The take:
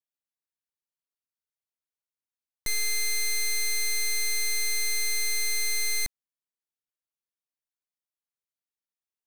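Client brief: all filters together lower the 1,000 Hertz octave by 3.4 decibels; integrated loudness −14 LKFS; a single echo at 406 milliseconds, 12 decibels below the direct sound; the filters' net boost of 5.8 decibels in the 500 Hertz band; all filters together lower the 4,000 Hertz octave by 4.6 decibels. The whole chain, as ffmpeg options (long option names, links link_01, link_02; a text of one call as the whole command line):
ffmpeg -i in.wav -af "equalizer=frequency=500:width_type=o:gain=8.5,equalizer=frequency=1000:width_type=o:gain=-7,equalizer=frequency=4000:width_type=o:gain=-4.5,aecho=1:1:406:0.251,volume=14.5dB" out.wav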